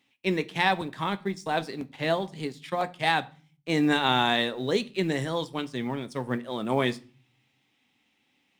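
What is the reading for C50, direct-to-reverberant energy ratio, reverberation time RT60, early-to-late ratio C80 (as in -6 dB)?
21.5 dB, 11.0 dB, 0.40 s, 25.5 dB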